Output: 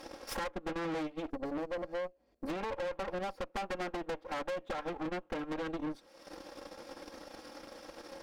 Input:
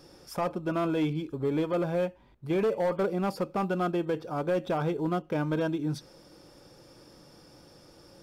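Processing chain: comb filter that takes the minimum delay 3.7 ms; transient shaper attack +8 dB, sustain -11 dB; tone controls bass -12 dB, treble -11 dB; compression 4:1, threshold -39 dBFS, peak gain reduction 14.5 dB; time-frequency box 1.31–2.48 s, 750–4100 Hz -13 dB; valve stage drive 46 dB, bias 0.75; tape noise reduction on one side only encoder only; trim +12.5 dB

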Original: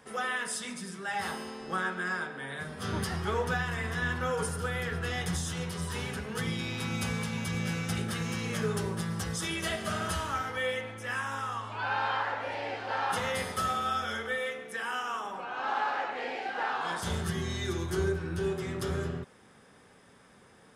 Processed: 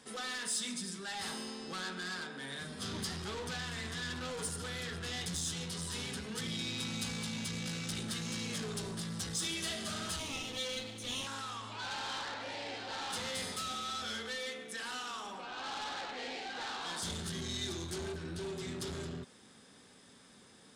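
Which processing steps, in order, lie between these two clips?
10.19–11.27 s: comb filter that takes the minimum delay 0.31 ms; saturation -34 dBFS, distortion -9 dB; graphic EQ 250/4000/8000 Hz +7/+11/+10 dB; trim -6 dB

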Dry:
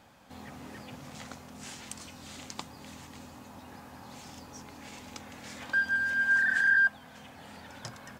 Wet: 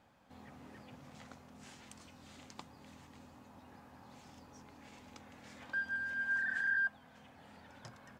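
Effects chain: treble shelf 3.7 kHz -7.5 dB; trim -8.5 dB

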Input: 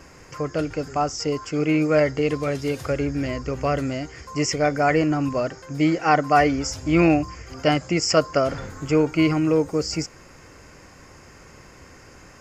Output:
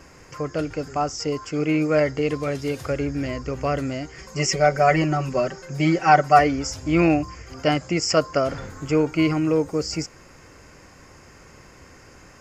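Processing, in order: 4.18–6.39 s: comb 5.3 ms, depth 100%; trim -1 dB

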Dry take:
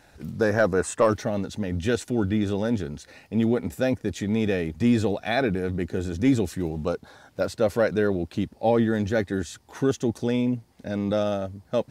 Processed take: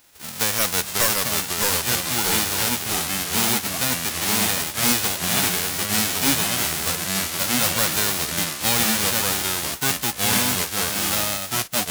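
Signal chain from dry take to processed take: formants flattened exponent 0.1; ever faster or slower copies 493 ms, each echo -2 st, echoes 3; wavefolder -10.5 dBFS

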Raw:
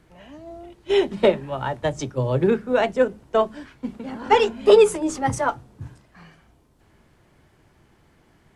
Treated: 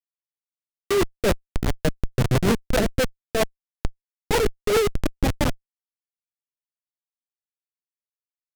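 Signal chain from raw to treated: Schmitt trigger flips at -18 dBFS; rotary cabinet horn 7.5 Hz; trim +6.5 dB

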